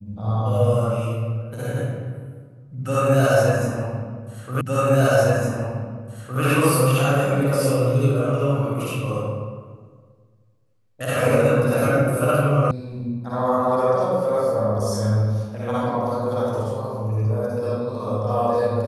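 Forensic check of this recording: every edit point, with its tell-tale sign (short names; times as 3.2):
4.61 repeat of the last 1.81 s
12.71 sound cut off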